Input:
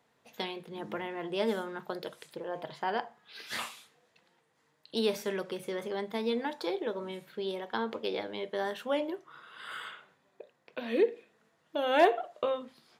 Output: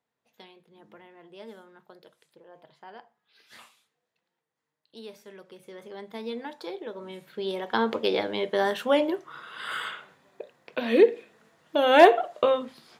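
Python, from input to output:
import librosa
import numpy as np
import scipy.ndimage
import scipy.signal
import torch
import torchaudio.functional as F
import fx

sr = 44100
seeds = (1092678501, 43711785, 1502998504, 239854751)

y = fx.gain(x, sr, db=fx.line((5.26, -14.0), (6.2, -3.5), (6.9, -3.5), (7.82, 8.5)))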